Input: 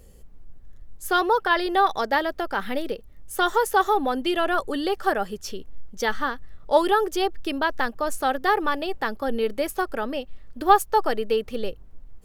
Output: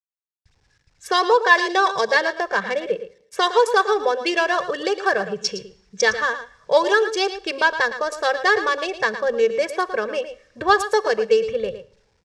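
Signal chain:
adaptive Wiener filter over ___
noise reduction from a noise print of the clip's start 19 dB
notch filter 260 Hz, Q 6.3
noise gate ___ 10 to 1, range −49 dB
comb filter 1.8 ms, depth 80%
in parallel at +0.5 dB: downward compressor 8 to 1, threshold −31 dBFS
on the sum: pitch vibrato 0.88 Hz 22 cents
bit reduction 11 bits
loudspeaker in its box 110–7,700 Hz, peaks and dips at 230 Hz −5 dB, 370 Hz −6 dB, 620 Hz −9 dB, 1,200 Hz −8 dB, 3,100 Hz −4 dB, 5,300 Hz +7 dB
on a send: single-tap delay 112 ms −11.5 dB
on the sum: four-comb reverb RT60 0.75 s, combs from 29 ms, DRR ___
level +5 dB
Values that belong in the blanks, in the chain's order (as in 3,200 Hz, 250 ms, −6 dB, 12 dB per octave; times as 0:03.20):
9 samples, −50 dBFS, 20 dB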